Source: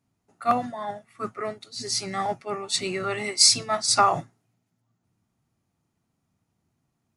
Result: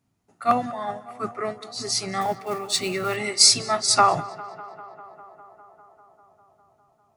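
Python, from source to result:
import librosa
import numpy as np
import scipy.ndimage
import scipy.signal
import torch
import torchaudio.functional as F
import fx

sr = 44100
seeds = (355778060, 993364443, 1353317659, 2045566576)

y = fx.block_float(x, sr, bits=5, at=(2.21, 3.17))
y = fx.echo_tape(y, sr, ms=200, feedback_pct=84, wet_db=-17.0, lp_hz=2900.0, drive_db=3.0, wow_cents=18)
y = F.gain(torch.from_numpy(y), 2.0).numpy()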